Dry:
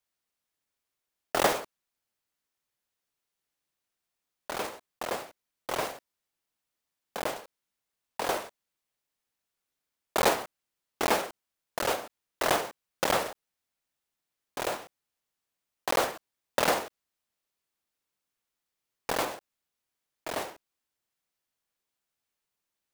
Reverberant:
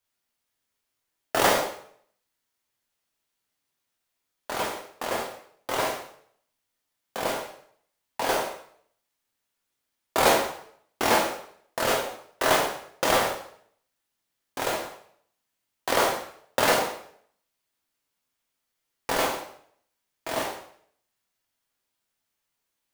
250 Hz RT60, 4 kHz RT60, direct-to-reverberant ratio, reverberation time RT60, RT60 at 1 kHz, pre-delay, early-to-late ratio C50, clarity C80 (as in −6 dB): 0.55 s, 0.55 s, −1.0 dB, 0.60 s, 0.60 s, 4 ms, 6.0 dB, 9.0 dB